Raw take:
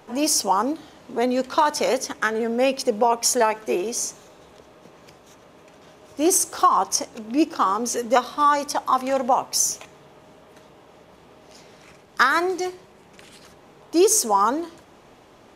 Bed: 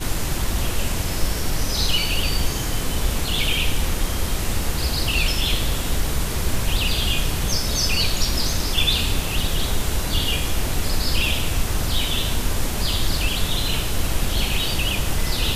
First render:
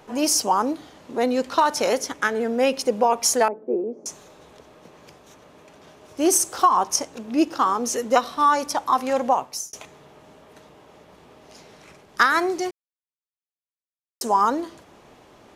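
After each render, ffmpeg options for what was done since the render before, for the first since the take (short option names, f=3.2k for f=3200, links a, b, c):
-filter_complex "[0:a]asettb=1/sr,asplit=3[a][b][c];[a]atrim=end=3.484[d];[b]atrim=start=3.48:end=4.06,asetpts=PTS-STARTPTS,afade=t=in:d=0.004:c=qsin,afade=t=out:st=0.576:d=0.004:c=qsin,asuperpass=centerf=330:order=4:qfactor=0.9[e];[c]atrim=start=4.056[f];[d][e]acrossfade=d=0.004:c1=hsin:c2=qsin[g];[g][f]acrossfade=d=0.004:c1=qsin:c2=hsin,asplit=4[h][i][j][k];[h]atrim=end=9.73,asetpts=PTS-STARTPTS,afade=t=out:st=9.3:d=0.43[l];[i]atrim=start=9.73:end=12.71,asetpts=PTS-STARTPTS,afade=t=in:d=0.004:c=hsin,afade=t=out:st=2.976:d=0.004:c=hsin[m];[j]atrim=start=12.71:end=14.21,asetpts=PTS-STARTPTS,volume=0[n];[k]atrim=start=14.21,asetpts=PTS-STARTPTS,afade=t=in:d=0.004:c=hsin[o];[l][m][n][o]concat=n=4:v=0:a=1"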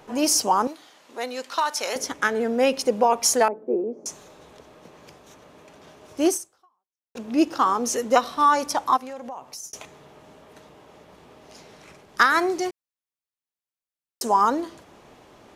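-filter_complex "[0:a]asettb=1/sr,asplit=3[a][b][c];[a]atrim=end=0.674[d];[b]atrim=start=0.67:end=1.96,asetpts=PTS-STARTPTS,afade=t=in:d=0.004:c=qsin,afade=t=out:st=1.286:d=0.004:c=qsin,highpass=f=1.4k:p=1[e];[c]atrim=start=1.956[f];[d][e]acrossfade=d=0.004:c1=hsin:c2=qsin[g];[g][f]acrossfade=d=0.004:c1=qsin:c2=hsin,asplit=3[h][i][j];[h]afade=t=out:st=8.96:d=0.02[k];[i]acompressor=threshold=-35dB:ratio=4:attack=3.2:release=140:knee=1:detection=peak,afade=t=in:st=8.96:d=0.02,afade=t=out:st=9.63:d=0.02[l];[j]afade=t=in:st=9.63:d=0.02[m];[k][l][m]amix=inputs=3:normalize=0,asplit=2[n][o];[n]atrim=end=7.15,asetpts=PTS-STARTPTS,afade=t=out:st=6.27:d=0.88:c=exp[p];[o]atrim=start=7.15,asetpts=PTS-STARTPTS,afade=t=in:d=0.004:c=hsin[q];[p][q]concat=n=2:v=0:a=1"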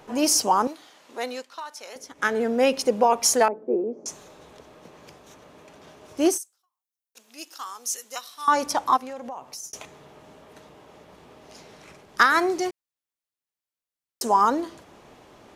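-filter_complex "[0:a]asettb=1/sr,asplit=3[a][b][c];[a]atrim=end=3.464[d];[b]atrim=start=3.46:end=4.08,asetpts=PTS-STARTPTS,afade=t=in:d=0.004:c=qsin,afade=t=out:st=0.616:d=0.004:c=qsin,lowpass=7.6k[e];[c]atrim=start=4.076[f];[d][e]acrossfade=d=0.004:c1=hsin:c2=qsin[g];[g][f]acrossfade=d=0.004:c1=qsin:c2=hsin,asettb=1/sr,asplit=3[h][i][j];[h]atrim=end=6.384[k];[i]atrim=start=6.38:end=8.48,asetpts=PTS-STARTPTS,afade=t=in:d=0.004:c=qsin,afade=t=out:st=2.096:d=0.004:c=qsin,aderivative[l];[j]atrim=start=8.476[m];[k][l]acrossfade=d=0.004:c1=hsin:c2=qsin[n];[n][m]acrossfade=d=0.004:c1=qsin:c2=hsin,asplit=3[o][p][q];[o]atrim=end=1.46,asetpts=PTS-STARTPTS,afade=t=out:st=1.29:d=0.17:c=qsin:silence=0.223872[r];[p]atrim=start=1.46:end=2.15,asetpts=PTS-STARTPTS,volume=-13dB[s];[q]atrim=start=2.15,asetpts=PTS-STARTPTS,afade=t=in:d=0.17:c=qsin:silence=0.223872[t];[r][s][t]concat=n=3:v=0:a=1"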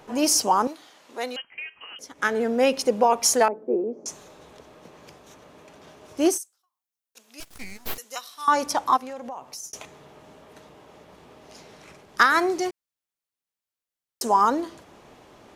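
-filter_complex "[0:a]asettb=1/sr,asplit=3[a][b][c];[a]atrim=end=1.364[d];[b]atrim=start=1.36:end=1.99,asetpts=PTS-STARTPTS,afade=t=in:d=0.004:c=qsin,afade=t=out:st=0.626:d=0.004:c=qsin,lowpass=f=2.9k:t=q:w=0.5098,lowpass=f=2.9k:t=q:w=0.6013,lowpass=f=2.9k:t=q:w=0.9,lowpass=f=2.9k:t=q:w=2.563,afreqshift=-3400[e];[c]atrim=start=1.986[f];[d][e]acrossfade=d=0.004:c1=hsin:c2=qsin[g];[g][f]acrossfade=d=0.004:c1=qsin:c2=hsin,asettb=1/sr,asplit=3[h][i][j];[h]atrim=end=7.404[k];[i]atrim=start=7.4:end=7.98,asetpts=PTS-STARTPTS,afade=t=in:d=0.004:c=qsin,afade=t=out:st=0.576:d=0.004:c=qsin,aeval=exprs='abs(val(0))':c=same[l];[j]atrim=start=7.976[m];[k][l]acrossfade=d=0.004:c1=hsin:c2=qsin[n];[n][m]acrossfade=d=0.004:c1=qsin:c2=hsin"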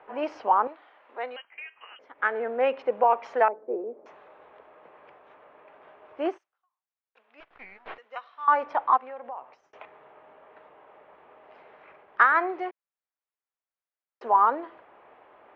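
-filter_complex "[0:a]lowpass=f=3.1k:w=0.5412,lowpass=f=3.1k:w=1.3066,acrossover=split=450 2400:gain=0.1 1 0.126[a][b][c];[a][b][c]amix=inputs=3:normalize=0"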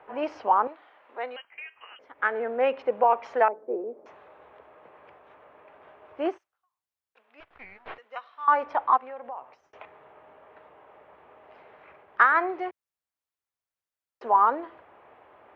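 -af "equalizer=f=84:w=1.3:g=9.5"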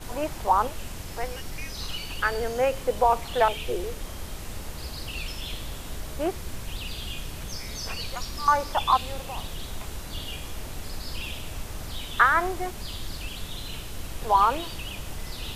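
-filter_complex "[1:a]volume=-13.5dB[a];[0:a][a]amix=inputs=2:normalize=0"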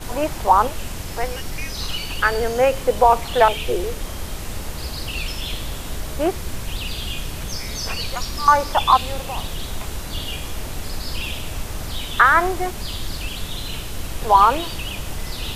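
-af "volume=7dB,alimiter=limit=-1dB:level=0:latency=1"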